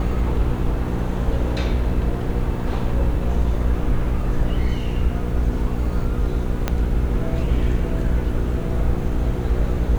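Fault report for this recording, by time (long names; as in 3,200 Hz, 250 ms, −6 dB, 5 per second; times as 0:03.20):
mains hum 60 Hz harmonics 8 −25 dBFS
0:06.68: click −7 dBFS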